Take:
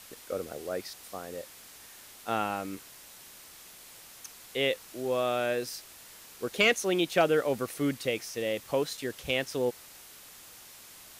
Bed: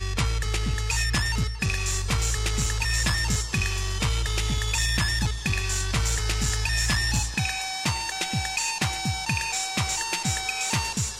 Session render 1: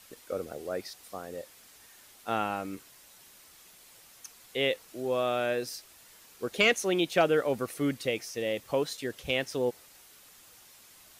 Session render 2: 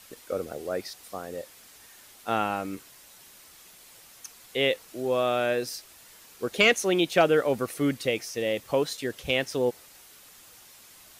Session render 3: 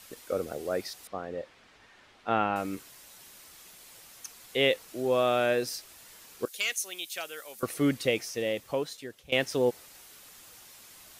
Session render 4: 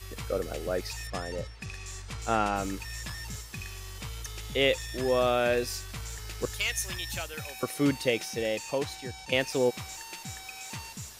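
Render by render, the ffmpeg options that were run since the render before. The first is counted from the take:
-af "afftdn=nr=6:nf=-51"
-af "volume=3.5dB"
-filter_complex "[0:a]asettb=1/sr,asplit=3[a][b][c];[a]atrim=end=1.074[d];[b]atrim=start=1.07:end=2.56,asetpts=PTS-STARTPTS,afade=t=in:d=0.004:c=qsin,afade=t=out:st=1.486:d=0.004:c=qsin,lowpass=2.9k[e];[c]atrim=start=2.556[f];[d][e]acrossfade=d=0.004:c1=hsin:c2=qsin[g];[g][f]acrossfade=d=0.004:c1=qsin:c2=hsin,asettb=1/sr,asplit=3[h][i][j];[h]atrim=end=6.454[k];[i]atrim=start=6.45:end=7.63,asetpts=PTS-STARTPTS,afade=t=in:d=0.004:c=qsin,afade=t=out:st=1.176:d=0.004:c=qsin,aderivative[l];[j]atrim=start=7.626[m];[k][l]acrossfade=d=0.004:c1=hsin:c2=qsin[n];[n][m]acrossfade=d=0.004:c1=qsin:c2=hsin,asplit=2[o][p];[o]atrim=end=9.32,asetpts=PTS-STARTPTS,afade=t=out:st=8.14:d=1.18:silence=0.11885[q];[p]atrim=start=9.32,asetpts=PTS-STARTPTS,afade=t=in:d=0.004:c=hsin:silence=0.11885[r];[q][r]concat=n=2:v=0:a=1"
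-filter_complex "[1:a]volume=-14.5dB[a];[0:a][a]amix=inputs=2:normalize=0"

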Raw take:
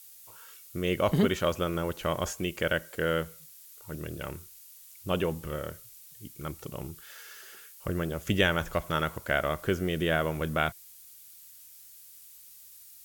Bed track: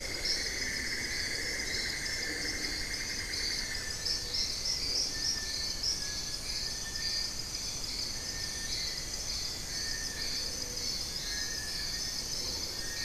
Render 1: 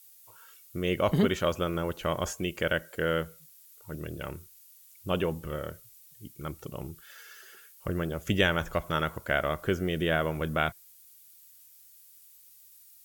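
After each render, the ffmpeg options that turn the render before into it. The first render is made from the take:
-af "afftdn=nr=6:nf=-52"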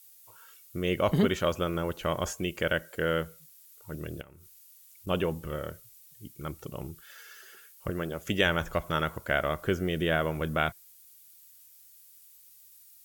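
-filter_complex "[0:a]asettb=1/sr,asplit=3[a][b][c];[a]atrim=end=4.214[d];[b]atrim=start=4.21:end=5.07,asetpts=PTS-STARTPTS,afade=t=in:d=0.004:c=qsin,afade=t=out:st=0.856:d=0.004:c=qsin,acompressor=threshold=-48dB:ratio=16:attack=3.2:release=140:knee=1:detection=peak[e];[c]atrim=start=5.066[f];[d][e]acrossfade=d=0.004:c1=hsin:c2=qsin[g];[g][f]acrossfade=d=0.004:c1=qsin:c2=hsin,asettb=1/sr,asplit=3[h][i][j];[h]atrim=end=7.904[k];[i]atrim=start=7.9:end=8.46,asetpts=PTS-STARTPTS,afade=t=in:d=0.004:c=qsin,afade=t=out:st=0.556:d=0.004:c=qsin,lowshelf=f=130:g=-9.5[l];[j]atrim=start=8.456[m];[k][l]acrossfade=d=0.004:c1=hsin:c2=qsin[n];[n][m]acrossfade=d=0.004:c1=qsin:c2=hsin"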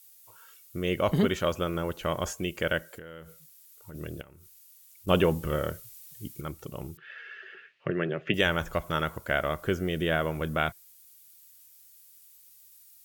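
-filter_complex "[0:a]asplit=3[a][b][c];[a]afade=t=out:st=2.84:d=0.02[d];[b]acompressor=threshold=-39dB:ratio=20:attack=3.2:release=140:knee=1:detection=peak,afade=t=in:st=2.84:d=0.02,afade=t=out:st=3.94:d=0.02[e];[c]afade=t=in:st=3.94:d=0.02[f];[d][e][f]amix=inputs=3:normalize=0,asettb=1/sr,asplit=3[g][h][i];[g]atrim=end=5.084[j];[h]atrim=start=5.08:end=6.41,asetpts=PTS-STARTPTS,afade=t=in:d=0.004:c=qsin,afade=t=out:st=1.326:d=0.004:c=qsin,acontrast=51[k];[i]atrim=start=6.406[l];[j][k]acrossfade=d=0.004:c1=hsin:c2=qsin[m];[m][l]acrossfade=d=0.004:c1=qsin:c2=hsin,asettb=1/sr,asplit=3[n][o][p];[n]atrim=end=6.974[q];[o]atrim=start=6.97:end=8.34,asetpts=PTS-STARTPTS,afade=t=in:d=0.004:c=qsin,afade=t=out:st=1.366:d=0.004:c=qsin,highpass=f=120:w=0.5412,highpass=f=120:w=1.3066,equalizer=f=140:t=q:w=4:g=9,equalizer=f=380:t=q:w=4:g=8,equalizer=f=620:t=q:w=4:g=3,equalizer=f=920:t=q:w=4:g=-3,equalizer=f=1.8k:t=q:w=4:g=10,equalizer=f=2.6k:t=q:w=4:g=9,lowpass=f=3.3k:w=0.5412,lowpass=f=3.3k:w=1.3066[r];[p]atrim=start=8.336[s];[q][r]acrossfade=d=0.004:c1=hsin:c2=qsin[t];[t][s]acrossfade=d=0.004:c1=qsin:c2=hsin"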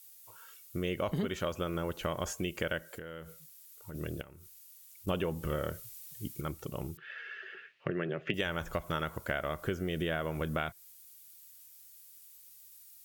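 -af "acompressor=threshold=-30dB:ratio=5"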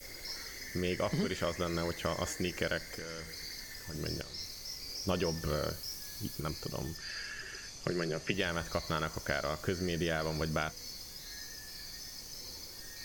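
-filter_complex "[1:a]volume=-10.5dB[a];[0:a][a]amix=inputs=2:normalize=0"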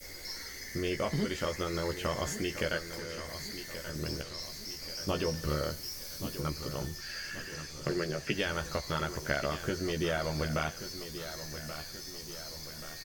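-filter_complex "[0:a]asplit=2[a][b];[b]adelay=14,volume=-5.5dB[c];[a][c]amix=inputs=2:normalize=0,aecho=1:1:1131|2262|3393|4524|5655:0.266|0.136|0.0692|0.0353|0.018"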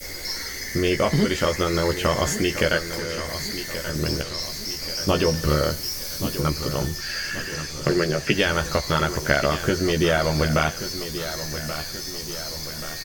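-af "volume=11.5dB"

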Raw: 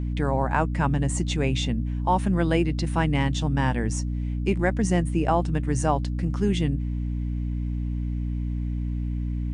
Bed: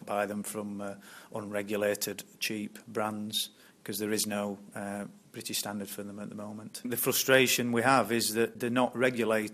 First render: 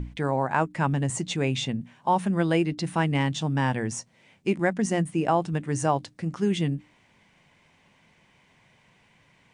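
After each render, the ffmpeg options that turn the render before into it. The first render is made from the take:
-af "bandreject=f=60:t=h:w=6,bandreject=f=120:t=h:w=6,bandreject=f=180:t=h:w=6,bandreject=f=240:t=h:w=6,bandreject=f=300:t=h:w=6"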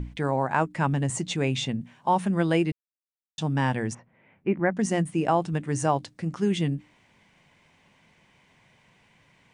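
-filter_complex "[0:a]asplit=3[a][b][c];[a]afade=t=out:st=3.93:d=0.02[d];[b]lowpass=f=2.2k:w=0.5412,lowpass=f=2.2k:w=1.3066,afade=t=in:st=3.93:d=0.02,afade=t=out:st=4.76:d=0.02[e];[c]afade=t=in:st=4.76:d=0.02[f];[d][e][f]amix=inputs=3:normalize=0,asplit=3[g][h][i];[g]atrim=end=2.72,asetpts=PTS-STARTPTS,afade=t=out:st=2.716:d=0.004:c=hsin[j];[h]atrim=start=2.72:end=3.38,asetpts=PTS-STARTPTS,volume=0[k];[i]atrim=start=3.38,asetpts=PTS-STARTPTS,afade=t=in:d=0.004:c=hsin[l];[j][k][l]concat=n=3:v=0:a=1"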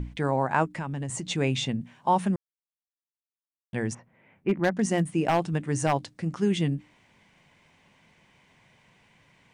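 -filter_complex "[0:a]asettb=1/sr,asplit=3[a][b][c];[a]atrim=end=0.724[d];[b]atrim=start=0.72:end=1.26,asetpts=PTS-STARTPTS,afade=t=in:d=0.004:c=qsin,afade=t=out:st=0.536:d=0.004:c=qsin,acompressor=threshold=-29dB:ratio=6:attack=3.2:release=140:knee=1:detection=peak[e];[c]atrim=start=1.256[f];[d][e]acrossfade=d=0.004:c1=hsin:c2=qsin[g];[g][f]acrossfade=d=0.004:c1=qsin:c2=hsin,asplit=3[h][i][j];[h]afade=t=out:st=4.48:d=0.02[k];[i]aeval=exprs='0.168*(abs(mod(val(0)/0.168+3,4)-2)-1)':c=same,afade=t=in:st=4.48:d=0.02,afade=t=out:st=5.92:d=0.02[l];[j]afade=t=in:st=5.92:d=0.02[m];[k][l][m]amix=inputs=3:normalize=0,asplit=3[n][o][p];[n]atrim=end=2.36,asetpts=PTS-STARTPTS,afade=t=out:st=2.356:d=0.004:c=hsin[q];[o]atrim=start=2.36:end=3.73,asetpts=PTS-STARTPTS,volume=0[r];[p]atrim=start=3.73,asetpts=PTS-STARTPTS,afade=t=in:d=0.004:c=hsin[s];[q][r][s]concat=n=3:v=0:a=1"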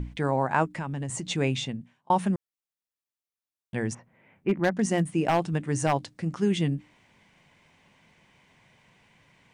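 -filter_complex "[0:a]asplit=2[a][b];[a]atrim=end=2.1,asetpts=PTS-STARTPTS,afade=t=out:st=1.46:d=0.64[c];[b]atrim=start=2.1,asetpts=PTS-STARTPTS,afade=t=in:d=0.004:c=hsin[d];[c][d]concat=n=2:v=0:a=1"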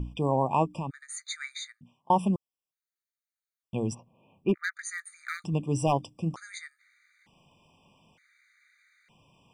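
-af "afftfilt=real='re*gt(sin(2*PI*0.55*pts/sr)*(1-2*mod(floor(b*sr/1024/1200),2)),0)':imag='im*gt(sin(2*PI*0.55*pts/sr)*(1-2*mod(floor(b*sr/1024/1200),2)),0)':win_size=1024:overlap=0.75"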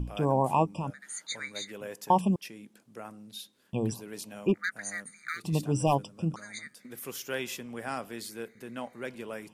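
-filter_complex "[1:a]volume=-11.5dB[a];[0:a][a]amix=inputs=2:normalize=0"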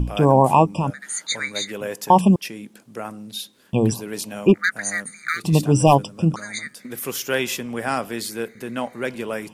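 -af "volume=11.5dB,alimiter=limit=-3dB:level=0:latency=1"

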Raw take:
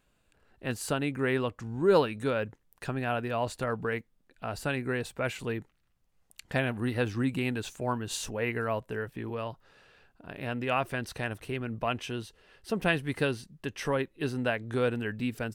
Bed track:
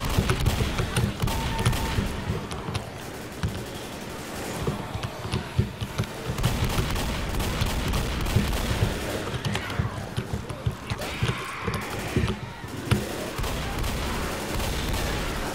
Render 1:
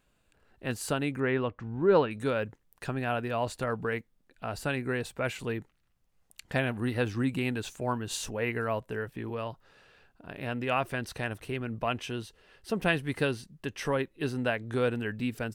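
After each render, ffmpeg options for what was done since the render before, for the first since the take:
-filter_complex "[0:a]asettb=1/sr,asplit=3[a][b][c];[a]atrim=end=1.204[d];[b]atrim=start=1.2:end=2.11,asetpts=PTS-STARTPTS,afade=t=in:d=0.004:c=qsin,afade=t=out:st=0.906:d=0.004:c=qsin,lowpass=2.8k[e];[c]atrim=start=2.106[f];[d][e]acrossfade=d=0.004:c1=hsin:c2=qsin[g];[g][f]acrossfade=d=0.004:c1=qsin:c2=hsin"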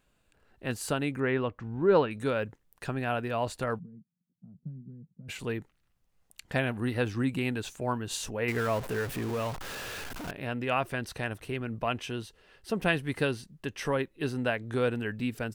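-filter_complex "[0:a]asplit=3[a][b][c];[a]afade=t=out:st=3.78:d=0.02[d];[b]asuperpass=centerf=170:order=4:qfactor=2.7,afade=t=in:st=3.78:d=0.02,afade=t=out:st=5.28:d=0.02[e];[c]afade=t=in:st=5.28:d=0.02[f];[d][e][f]amix=inputs=3:normalize=0,asettb=1/sr,asplit=3[g][h][i];[g]atrim=end=8.484[j];[h]atrim=start=8.48:end=10.31,asetpts=PTS-STARTPTS,afade=t=in:d=0.004:c=qsin,afade=t=out:st=1.826:d=0.004:c=qsin,aeval=exprs='val(0)+0.5*0.0211*sgn(val(0))':c=same[k];[i]atrim=start=10.306[l];[j][k]acrossfade=d=0.004:c1=hsin:c2=qsin[m];[m][l]acrossfade=d=0.004:c1=qsin:c2=hsin"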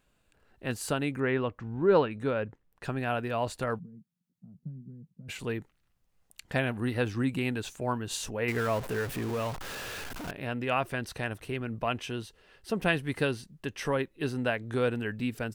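-filter_complex "[0:a]asettb=1/sr,asplit=3[a][b][c];[a]atrim=end=2.084[d];[b]atrim=start=2.08:end=2.84,asetpts=PTS-STARTPTS,afade=t=in:d=0.004:c=qsin,afade=t=out:st=0.756:d=0.004:c=qsin,lowpass=f=2.1k:p=1[e];[c]atrim=start=2.836[f];[d][e]acrossfade=d=0.004:c1=hsin:c2=qsin[g];[g][f]acrossfade=d=0.004:c1=qsin:c2=hsin"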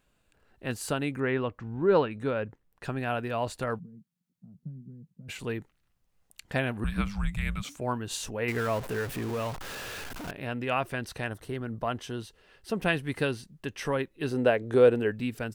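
-filter_complex "[0:a]asettb=1/sr,asplit=3[a][b][c];[a]atrim=end=6.844[d];[b]atrim=start=6.84:end=7.77,asetpts=PTS-STARTPTS,afade=t=in:d=0.004:c=qsin,afade=t=out:st=0.926:d=0.004:c=qsin,afreqshift=-300[e];[c]atrim=start=7.766[f];[d][e]acrossfade=d=0.004:c1=hsin:c2=qsin[g];[g][f]acrossfade=d=0.004:c1=qsin:c2=hsin,asettb=1/sr,asplit=3[h][i][j];[h]atrim=end=11.294[k];[i]atrim=start=11.29:end=12.19,asetpts=PTS-STARTPTS,afade=t=in:d=0.004:c=qsin,afade=t=out:st=0.896:d=0.004:c=qsin,equalizer=f=2.5k:t=o:w=0.32:g=-13[l];[j]atrim=start=12.186[m];[k][l]acrossfade=d=0.004:c1=hsin:c2=qsin[n];[n][m]acrossfade=d=0.004:c1=qsin:c2=hsin,asettb=1/sr,asplit=3[o][p][q];[o]atrim=end=14.314[r];[p]atrim=start=14.31:end=15.12,asetpts=PTS-STARTPTS,afade=t=in:d=0.004:c=qsin,afade=t=out:st=0.806:d=0.004:c=qsin,equalizer=f=460:w=1.1:g=10.5[s];[q]atrim=start=15.116[t];[r][s]acrossfade=d=0.004:c1=hsin:c2=qsin[u];[u][t]acrossfade=d=0.004:c1=qsin:c2=hsin"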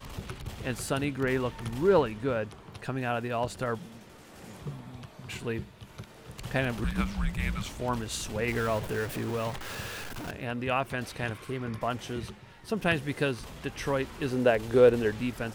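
-filter_complex "[1:a]volume=-16dB[a];[0:a][a]amix=inputs=2:normalize=0"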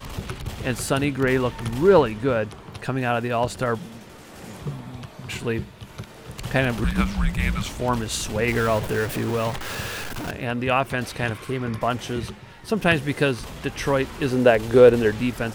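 -af "volume=7.5dB,alimiter=limit=-3dB:level=0:latency=1"

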